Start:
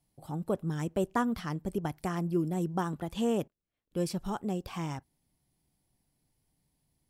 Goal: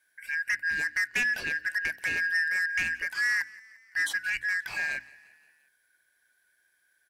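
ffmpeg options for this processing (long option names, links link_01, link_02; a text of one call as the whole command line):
ffmpeg -i in.wav -filter_complex "[0:a]afftfilt=real='real(if(lt(b,272),68*(eq(floor(b/68),0)*1+eq(floor(b/68),1)*0+eq(floor(b/68),2)*3+eq(floor(b/68),3)*2)+mod(b,68),b),0)':imag='imag(if(lt(b,272),68*(eq(floor(b/68),0)*1+eq(floor(b/68),1)*0+eq(floor(b/68),2)*3+eq(floor(b/68),3)*2)+mod(b,68),b),0)':win_size=2048:overlap=0.75,bandreject=frequency=60:width_type=h:width=6,bandreject=frequency=120:width_type=h:width=6,bandreject=frequency=180:width_type=h:width=6,bandreject=frequency=240:width_type=h:width=6,bandreject=frequency=300:width_type=h:width=6,asoftclip=type=tanh:threshold=-27.5dB,asplit=5[link_01][link_02][link_03][link_04][link_05];[link_02]adelay=174,afreqshift=34,volume=-22dB[link_06];[link_03]adelay=348,afreqshift=68,volume=-27dB[link_07];[link_04]adelay=522,afreqshift=102,volume=-32.1dB[link_08];[link_05]adelay=696,afreqshift=136,volume=-37.1dB[link_09];[link_01][link_06][link_07][link_08][link_09]amix=inputs=5:normalize=0,volume=5.5dB" out.wav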